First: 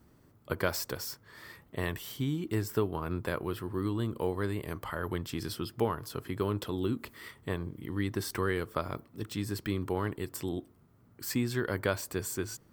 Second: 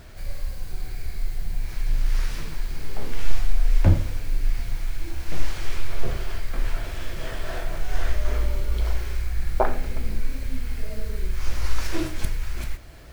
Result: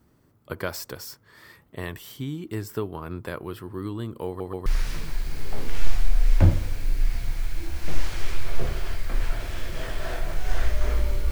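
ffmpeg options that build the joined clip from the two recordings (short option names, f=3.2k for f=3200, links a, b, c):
-filter_complex "[0:a]apad=whole_dur=11.31,atrim=end=11.31,asplit=3[a][b][c];[a]atrim=end=4.402[d];[b]atrim=start=4.268:end=4.402[e];[c]atrim=start=4.268:end=4.402[f];[1:a]atrim=start=2.098:end=8.75[g];[d][e]acrossfade=d=0.004:c1=hsin:c2=hsin[h];[h][f]acrossfade=d=0.004:c1=hsin:c2=hsin[i];[i][g]acrossfade=d=0.004:c1=hsin:c2=hsin"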